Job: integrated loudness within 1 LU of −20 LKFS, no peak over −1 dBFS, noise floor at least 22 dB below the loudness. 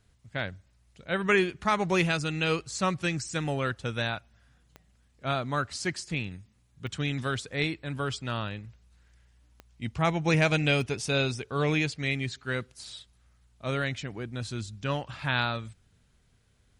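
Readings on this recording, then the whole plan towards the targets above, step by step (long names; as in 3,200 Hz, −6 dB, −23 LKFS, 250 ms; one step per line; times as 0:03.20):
number of clicks 4; integrated loudness −29.5 LKFS; sample peak −12.0 dBFS; target loudness −20.0 LKFS
→ click removal
level +9.5 dB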